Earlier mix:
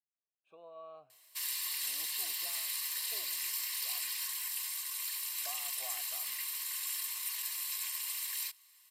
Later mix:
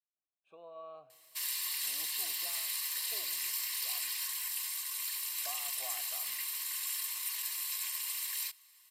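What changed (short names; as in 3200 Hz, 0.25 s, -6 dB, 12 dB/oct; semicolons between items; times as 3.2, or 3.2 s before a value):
speech: send +10.0 dB; background: send on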